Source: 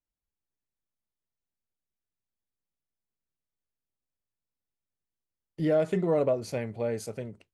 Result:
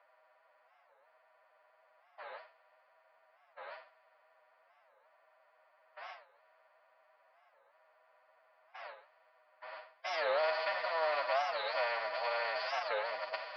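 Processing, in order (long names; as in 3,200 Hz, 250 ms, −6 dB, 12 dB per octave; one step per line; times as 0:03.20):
compressor on every frequency bin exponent 0.2
Butterworth low-pass 4,900 Hz 96 dB per octave
noise gate with hold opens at −23 dBFS
low-pass that shuts in the quiet parts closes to 1,800 Hz, open at −19.5 dBFS
inverse Chebyshev high-pass filter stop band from 400 Hz, stop band 40 dB
phase-vocoder stretch with locked phases 1.8×
wow of a warped record 45 rpm, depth 250 cents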